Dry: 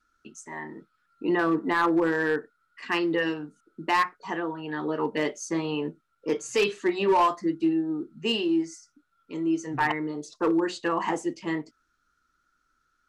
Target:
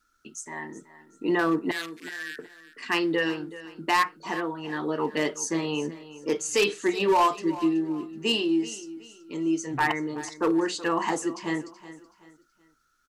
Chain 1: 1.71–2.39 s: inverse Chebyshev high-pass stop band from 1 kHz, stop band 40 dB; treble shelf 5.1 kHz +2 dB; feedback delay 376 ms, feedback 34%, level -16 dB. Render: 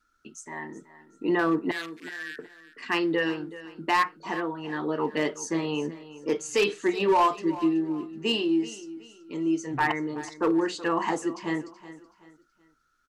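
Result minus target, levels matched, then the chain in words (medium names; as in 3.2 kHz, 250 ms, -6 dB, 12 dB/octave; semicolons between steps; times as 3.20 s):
8 kHz band -5.0 dB
1.71–2.39 s: inverse Chebyshev high-pass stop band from 1 kHz, stop band 40 dB; treble shelf 5.1 kHz +10.5 dB; feedback delay 376 ms, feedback 34%, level -16 dB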